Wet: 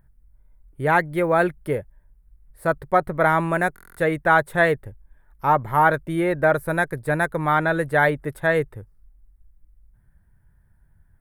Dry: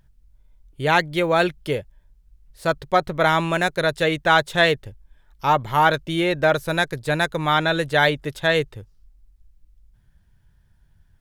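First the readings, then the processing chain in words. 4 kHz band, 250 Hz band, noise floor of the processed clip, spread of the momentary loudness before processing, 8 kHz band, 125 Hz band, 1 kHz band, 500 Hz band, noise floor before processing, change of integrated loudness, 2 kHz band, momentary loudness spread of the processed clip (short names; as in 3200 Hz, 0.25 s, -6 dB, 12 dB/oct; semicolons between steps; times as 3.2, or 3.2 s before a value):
-16.0 dB, 0.0 dB, -59 dBFS, 8 LU, -5.0 dB, 0.0 dB, 0.0 dB, 0.0 dB, -59 dBFS, -1.0 dB, -1.0 dB, 8 LU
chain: band shelf 4300 Hz -16 dB; stuck buffer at 3.74, samples 1024, times 9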